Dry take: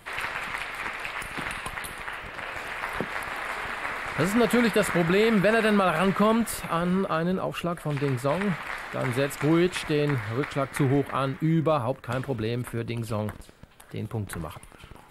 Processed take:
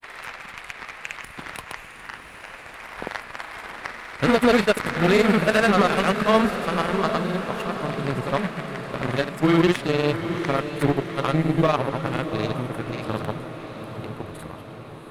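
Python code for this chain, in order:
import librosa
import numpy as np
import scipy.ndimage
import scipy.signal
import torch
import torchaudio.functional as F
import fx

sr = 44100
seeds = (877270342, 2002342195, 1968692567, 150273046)

y = fx.granulator(x, sr, seeds[0], grain_ms=100.0, per_s=20.0, spray_ms=100.0, spread_st=0)
y = fx.cheby_harmonics(y, sr, harmonics=(3, 7), levels_db=(-23, -22), full_scale_db=-11.5)
y = fx.echo_diffused(y, sr, ms=749, feedback_pct=63, wet_db=-9.5)
y = F.gain(torch.from_numpy(y), 6.0).numpy()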